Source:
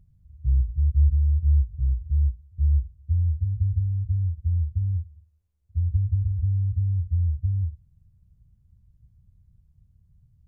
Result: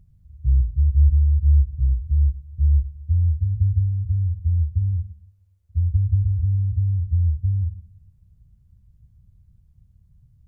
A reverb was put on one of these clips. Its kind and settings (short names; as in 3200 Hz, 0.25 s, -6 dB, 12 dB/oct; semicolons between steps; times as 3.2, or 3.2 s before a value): plate-style reverb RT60 0.85 s, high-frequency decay 0.75×, pre-delay 90 ms, DRR 14.5 dB; gain +3.5 dB